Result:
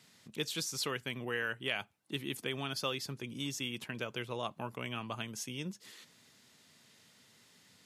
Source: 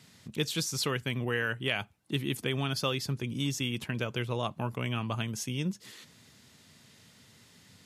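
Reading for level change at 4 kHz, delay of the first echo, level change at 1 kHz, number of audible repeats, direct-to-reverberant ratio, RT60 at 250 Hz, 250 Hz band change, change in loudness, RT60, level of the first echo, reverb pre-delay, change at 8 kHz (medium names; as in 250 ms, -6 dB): -4.0 dB, no echo, -4.5 dB, no echo, no reverb, no reverb, -7.5 dB, -5.5 dB, no reverb, no echo, no reverb, -4.0 dB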